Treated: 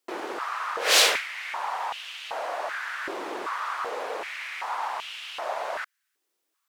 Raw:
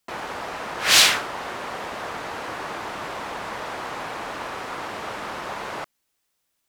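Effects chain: tempo 1×; stepped high-pass 2.6 Hz 350–2900 Hz; gain -4.5 dB

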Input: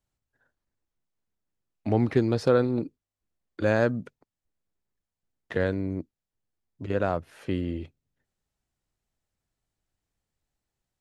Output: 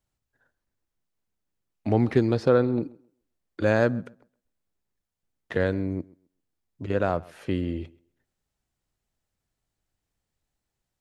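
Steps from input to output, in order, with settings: 2.37–2.82 high shelf 5600 Hz -11.5 dB; tape echo 0.131 s, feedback 22%, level -22 dB, low-pass 3900 Hz; gain +1.5 dB

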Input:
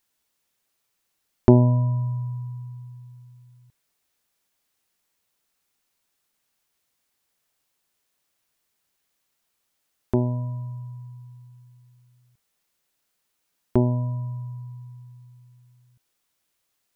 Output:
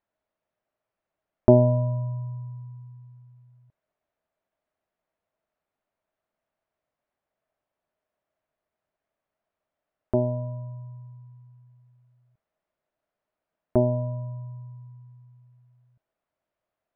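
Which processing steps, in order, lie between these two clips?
LPF 1600 Hz 12 dB/oct; bell 630 Hz +13 dB 0.29 oct; gain -3.5 dB

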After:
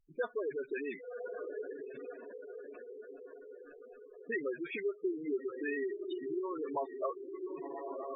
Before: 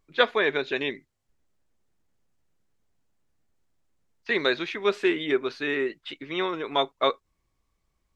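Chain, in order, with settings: treble ducked by the level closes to 1200 Hz, closed at -20 dBFS; diffused feedback echo 1.084 s, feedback 58%, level -10 dB; compressor 4:1, threshold -28 dBFS, peak gain reduction 10.5 dB; dispersion highs, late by 54 ms, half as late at 1600 Hz; spectral gate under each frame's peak -10 dB strong; gain -3.5 dB

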